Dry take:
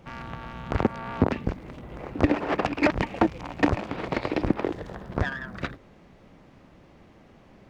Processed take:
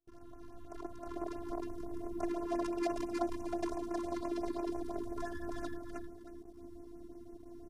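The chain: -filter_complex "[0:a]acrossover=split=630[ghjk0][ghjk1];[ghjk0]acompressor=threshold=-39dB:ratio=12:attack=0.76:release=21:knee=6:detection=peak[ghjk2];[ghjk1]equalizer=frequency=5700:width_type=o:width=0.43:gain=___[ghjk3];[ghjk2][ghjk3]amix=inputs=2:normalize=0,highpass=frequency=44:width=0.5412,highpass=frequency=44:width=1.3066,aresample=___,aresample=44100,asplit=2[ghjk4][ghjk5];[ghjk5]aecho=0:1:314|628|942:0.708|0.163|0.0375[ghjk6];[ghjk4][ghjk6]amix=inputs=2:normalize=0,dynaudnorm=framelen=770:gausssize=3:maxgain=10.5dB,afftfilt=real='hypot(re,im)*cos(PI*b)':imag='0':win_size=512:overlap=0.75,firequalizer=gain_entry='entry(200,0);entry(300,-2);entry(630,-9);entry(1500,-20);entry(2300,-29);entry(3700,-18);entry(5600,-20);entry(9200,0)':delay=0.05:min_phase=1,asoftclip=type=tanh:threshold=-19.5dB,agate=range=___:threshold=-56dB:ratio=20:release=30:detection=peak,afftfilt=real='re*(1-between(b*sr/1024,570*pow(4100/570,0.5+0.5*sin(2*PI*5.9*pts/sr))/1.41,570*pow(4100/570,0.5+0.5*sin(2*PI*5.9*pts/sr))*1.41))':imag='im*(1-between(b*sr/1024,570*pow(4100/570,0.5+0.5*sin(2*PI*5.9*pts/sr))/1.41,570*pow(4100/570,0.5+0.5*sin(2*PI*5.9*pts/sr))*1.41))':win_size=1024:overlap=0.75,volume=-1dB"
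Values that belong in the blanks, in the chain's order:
10, 32000, -27dB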